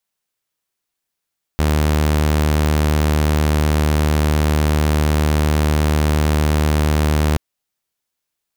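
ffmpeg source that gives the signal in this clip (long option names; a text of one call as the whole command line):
ffmpeg -f lavfi -i "aevalsrc='0.282*(2*mod(75.7*t,1)-1)':duration=5.78:sample_rate=44100" out.wav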